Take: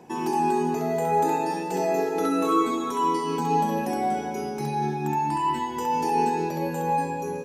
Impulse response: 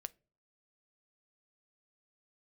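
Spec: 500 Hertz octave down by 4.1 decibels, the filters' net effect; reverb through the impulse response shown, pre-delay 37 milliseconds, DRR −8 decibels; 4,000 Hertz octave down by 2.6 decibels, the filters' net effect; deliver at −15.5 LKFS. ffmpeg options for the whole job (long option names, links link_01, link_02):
-filter_complex "[0:a]equalizer=frequency=500:width_type=o:gain=-5.5,equalizer=frequency=4000:width_type=o:gain=-3.5,asplit=2[link_01][link_02];[1:a]atrim=start_sample=2205,adelay=37[link_03];[link_02][link_03]afir=irnorm=-1:irlink=0,volume=12dB[link_04];[link_01][link_04]amix=inputs=2:normalize=0,volume=3.5dB"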